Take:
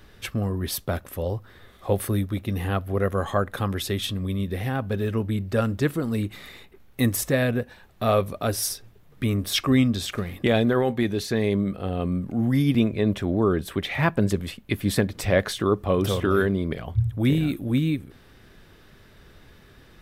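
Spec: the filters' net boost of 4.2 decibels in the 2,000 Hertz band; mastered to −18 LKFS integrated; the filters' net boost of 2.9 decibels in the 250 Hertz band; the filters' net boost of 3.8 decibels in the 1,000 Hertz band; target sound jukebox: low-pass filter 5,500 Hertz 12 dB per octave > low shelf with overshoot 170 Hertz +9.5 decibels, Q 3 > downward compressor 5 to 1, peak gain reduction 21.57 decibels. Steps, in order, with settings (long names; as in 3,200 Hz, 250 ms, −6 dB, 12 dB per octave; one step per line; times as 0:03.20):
low-pass filter 5,500 Hz 12 dB per octave
low shelf with overshoot 170 Hz +9.5 dB, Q 3
parametric band 250 Hz +6 dB
parametric band 1,000 Hz +4 dB
parametric band 2,000 Hz +4 dB
downward compressor 5 to 1, threshold −26 dBFS
level +11 dB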